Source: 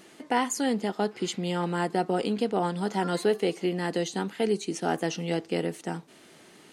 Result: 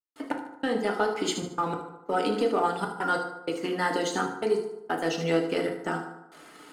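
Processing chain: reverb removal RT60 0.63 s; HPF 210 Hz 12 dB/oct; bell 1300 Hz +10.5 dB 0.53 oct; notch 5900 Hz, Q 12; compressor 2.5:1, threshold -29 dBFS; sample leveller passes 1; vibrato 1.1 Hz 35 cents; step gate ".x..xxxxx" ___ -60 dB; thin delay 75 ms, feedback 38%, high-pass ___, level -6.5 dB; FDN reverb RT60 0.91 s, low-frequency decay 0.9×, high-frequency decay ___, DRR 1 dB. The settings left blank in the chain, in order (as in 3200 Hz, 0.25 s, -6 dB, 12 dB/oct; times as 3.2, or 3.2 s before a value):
95 bpm, 3800 Hz, 0.4×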